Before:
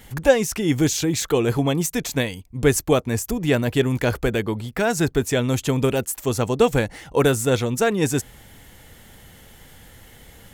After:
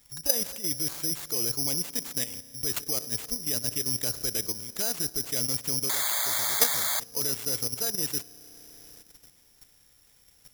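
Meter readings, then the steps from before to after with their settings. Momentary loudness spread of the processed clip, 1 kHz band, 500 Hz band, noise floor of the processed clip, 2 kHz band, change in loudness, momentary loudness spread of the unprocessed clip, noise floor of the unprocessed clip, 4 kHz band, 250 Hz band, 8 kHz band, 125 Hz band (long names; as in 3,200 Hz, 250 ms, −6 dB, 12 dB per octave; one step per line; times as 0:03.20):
7 LU, −12.0 dB, −19.0 dB, −61 dBFS, −11.5 dB, −5.0 dB, 6 LU, −48 dBFS, 0.0 dB, −18.5 dB, +1.0 dB, −18.5 dB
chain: spring reverb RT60 3.5 s, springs 33 ms, chirp 55 ms, DRR 12.5 dB
sound drawn into the spectrogram noise, 0:05.89–0:07.00, 560–2,300 Hz −12 dBFS
soft clipping −3.5 dBFS, distortion −21 dB
output level in coarse steps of 11 dB
bad sample-rate conversion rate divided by 8×, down none, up zero stuff
level −14.5 dB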